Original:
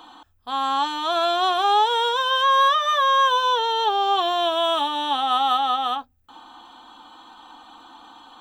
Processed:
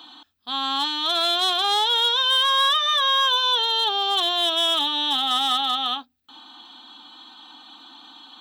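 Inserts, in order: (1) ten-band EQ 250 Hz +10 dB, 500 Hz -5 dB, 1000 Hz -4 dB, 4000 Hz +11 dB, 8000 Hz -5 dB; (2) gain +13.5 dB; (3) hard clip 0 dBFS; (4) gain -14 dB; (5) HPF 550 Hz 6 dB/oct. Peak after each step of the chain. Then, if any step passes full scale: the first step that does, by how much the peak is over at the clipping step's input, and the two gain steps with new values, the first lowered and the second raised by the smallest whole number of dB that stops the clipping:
-8.0, +5.5, 0.0, -14.0, -12.0 dBFS; step 2, 5.5 dB; step 2 +7.5 dB, step 4 -8 dB

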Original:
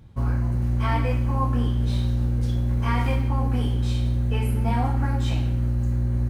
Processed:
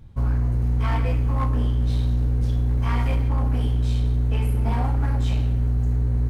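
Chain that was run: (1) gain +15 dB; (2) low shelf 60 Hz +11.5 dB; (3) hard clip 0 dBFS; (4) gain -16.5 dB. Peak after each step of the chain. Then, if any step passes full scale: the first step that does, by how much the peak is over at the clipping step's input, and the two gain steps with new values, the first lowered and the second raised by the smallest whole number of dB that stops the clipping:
+3.5, +6.5, 0.0, -16.5 dBFS; step 1, 6.5 dB; step 1 +8 dB, step 4 -9.5 dB

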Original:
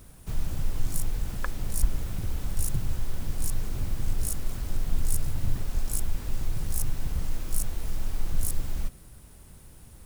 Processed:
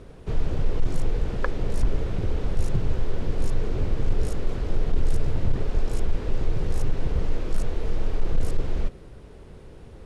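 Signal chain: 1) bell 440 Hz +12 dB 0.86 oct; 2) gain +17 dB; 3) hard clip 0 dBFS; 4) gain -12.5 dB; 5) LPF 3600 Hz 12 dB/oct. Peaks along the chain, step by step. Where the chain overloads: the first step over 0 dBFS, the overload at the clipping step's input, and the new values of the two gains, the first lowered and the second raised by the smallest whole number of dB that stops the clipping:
-9.5, +7.5, 0.0, -12.5, -12.0 dBFS; step 2, 7.5 dB; step 2 +9 dB, step 4 -4.5 dB

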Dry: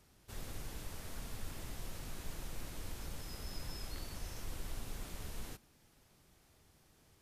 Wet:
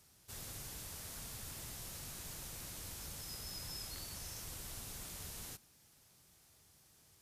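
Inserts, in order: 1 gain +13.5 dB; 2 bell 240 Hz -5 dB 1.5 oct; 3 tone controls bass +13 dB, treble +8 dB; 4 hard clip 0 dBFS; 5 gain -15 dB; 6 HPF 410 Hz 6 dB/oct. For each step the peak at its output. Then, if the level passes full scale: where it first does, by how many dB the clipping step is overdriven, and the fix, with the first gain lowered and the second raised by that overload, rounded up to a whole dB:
-15.5, -16.0, -4.0, -4.0, -19.0, -34.0 dBFS; no overload

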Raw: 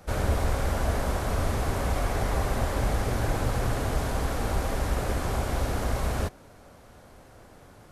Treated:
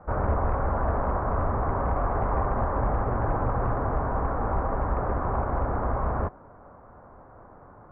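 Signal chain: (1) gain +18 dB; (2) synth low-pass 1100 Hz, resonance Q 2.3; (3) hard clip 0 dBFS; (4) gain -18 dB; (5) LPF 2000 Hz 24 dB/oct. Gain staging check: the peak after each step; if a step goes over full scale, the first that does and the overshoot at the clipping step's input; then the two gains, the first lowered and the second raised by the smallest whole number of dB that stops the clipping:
+5.0, +6.0, 0.0, -18.0, -17.0 dBFS; step 1, 6.0 dB; step 1 +12 dB, step 4 -12 dB

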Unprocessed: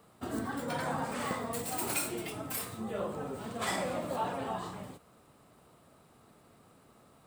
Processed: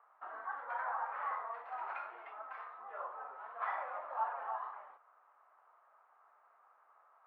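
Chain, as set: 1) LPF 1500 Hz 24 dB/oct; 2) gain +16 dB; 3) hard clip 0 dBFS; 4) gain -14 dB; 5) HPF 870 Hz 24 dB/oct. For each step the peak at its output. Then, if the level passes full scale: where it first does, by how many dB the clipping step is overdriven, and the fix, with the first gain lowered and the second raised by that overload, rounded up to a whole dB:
-20.0, -4.0, -4.0, -18.0, -24.0 dBFS; no overload

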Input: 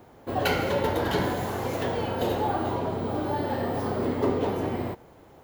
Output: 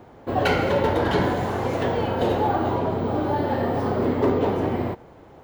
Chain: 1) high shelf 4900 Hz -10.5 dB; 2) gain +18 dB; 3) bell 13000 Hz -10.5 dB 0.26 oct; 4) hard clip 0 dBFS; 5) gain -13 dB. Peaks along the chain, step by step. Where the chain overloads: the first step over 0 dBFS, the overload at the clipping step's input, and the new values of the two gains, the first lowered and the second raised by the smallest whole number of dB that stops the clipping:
-13.0, +5.0, +5.0, 0.0, -13.0 dBFS; step 2, 5.0 dB; step 2 +13 dB, step 5 -8 dB

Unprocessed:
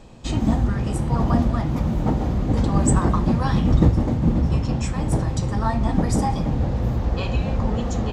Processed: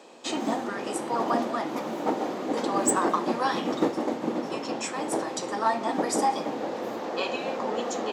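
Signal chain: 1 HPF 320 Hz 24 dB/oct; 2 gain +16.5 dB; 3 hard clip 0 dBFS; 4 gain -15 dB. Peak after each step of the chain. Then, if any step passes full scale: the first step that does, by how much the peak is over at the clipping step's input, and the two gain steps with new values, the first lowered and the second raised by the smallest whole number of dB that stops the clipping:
-9.5, +7.0, 0.0, -15.0 dBFS; step 2, 7.0 dB; step 2 +9.5 dB, step 4 -8 dB

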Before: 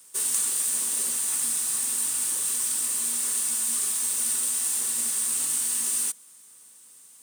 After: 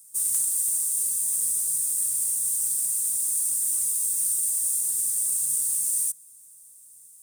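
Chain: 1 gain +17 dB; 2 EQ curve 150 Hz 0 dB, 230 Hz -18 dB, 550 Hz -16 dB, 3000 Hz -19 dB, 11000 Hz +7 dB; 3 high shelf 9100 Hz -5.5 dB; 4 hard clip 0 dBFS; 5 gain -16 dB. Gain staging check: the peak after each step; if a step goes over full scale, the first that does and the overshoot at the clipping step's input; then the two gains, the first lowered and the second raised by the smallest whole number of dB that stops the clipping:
+7.0, +10.0, +7.0, 0.0, -16.0 dBFS; step 1, 7.0 dB; step 1 +10 dB, step 5 -9 dB

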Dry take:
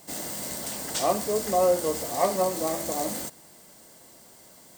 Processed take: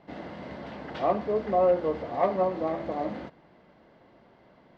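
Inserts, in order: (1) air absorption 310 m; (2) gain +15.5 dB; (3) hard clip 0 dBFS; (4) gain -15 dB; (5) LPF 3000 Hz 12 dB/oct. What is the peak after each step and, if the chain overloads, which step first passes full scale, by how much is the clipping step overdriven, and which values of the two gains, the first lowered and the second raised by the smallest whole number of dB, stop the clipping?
-12.0, +3.5, 0.0, -15.0, -14.5 dBFS; step 2, 3.5 dB; step 2 +11.5 dB, step 4 -11 dB

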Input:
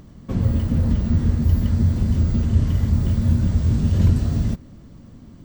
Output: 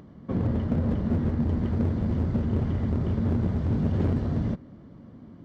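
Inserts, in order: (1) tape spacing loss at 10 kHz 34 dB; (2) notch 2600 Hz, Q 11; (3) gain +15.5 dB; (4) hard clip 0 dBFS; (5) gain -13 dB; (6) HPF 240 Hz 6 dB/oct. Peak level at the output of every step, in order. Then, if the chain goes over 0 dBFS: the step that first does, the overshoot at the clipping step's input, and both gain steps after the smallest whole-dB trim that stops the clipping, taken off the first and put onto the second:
-6.5, -6.5, +9.0, 0.0, -13.0, -12.5 dBFS; step 3, 9.0 dB; step 3 +6.5 dB, step 5 -4 dB

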